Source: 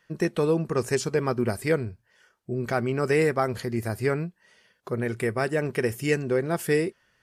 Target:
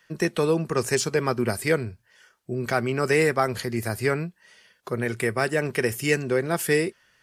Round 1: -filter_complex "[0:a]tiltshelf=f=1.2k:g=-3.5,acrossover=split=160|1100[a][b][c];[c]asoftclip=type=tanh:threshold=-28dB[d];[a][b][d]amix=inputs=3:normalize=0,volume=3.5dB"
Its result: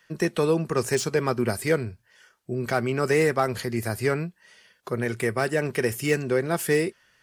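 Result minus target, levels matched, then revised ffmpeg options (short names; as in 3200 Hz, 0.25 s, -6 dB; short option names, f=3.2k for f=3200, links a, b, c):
soft clip: distortion +12 dB
-filter_complex "[0:a]tiltshelf=f=1.2k:g=-3.5,acrossover=split=160|1100[a][b][c];[c]asoftclip=type=tanh:threshold=-18dB[d];[a][b][d]amix=inputs=3:normalize=0,volume=3.5dB"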